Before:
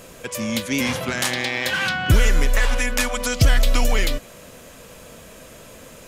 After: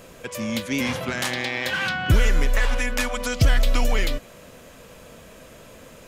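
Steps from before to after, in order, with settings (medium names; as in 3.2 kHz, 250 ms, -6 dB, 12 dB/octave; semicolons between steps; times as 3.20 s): peaking EQ 10 kHz -5 dB 1.8 oct; trim -2 dB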